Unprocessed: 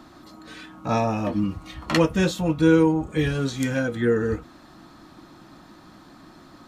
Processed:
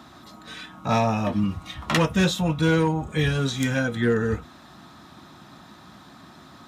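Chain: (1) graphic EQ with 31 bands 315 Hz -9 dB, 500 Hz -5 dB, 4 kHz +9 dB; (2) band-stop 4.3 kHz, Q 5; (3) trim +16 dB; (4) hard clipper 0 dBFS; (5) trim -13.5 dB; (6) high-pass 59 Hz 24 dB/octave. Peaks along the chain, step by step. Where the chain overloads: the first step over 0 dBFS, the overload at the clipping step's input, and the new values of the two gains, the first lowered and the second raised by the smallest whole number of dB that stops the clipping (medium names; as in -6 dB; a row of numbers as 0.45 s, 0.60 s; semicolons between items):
-3.5 dBFS, -7.5 dBFS, +8.5 dBFS, 0.0 dBFS, -13.5 dBFS, -9.5 dBFS; step 3, 8.5 dB; step 3 +7 dB, step 5 -4.5 dB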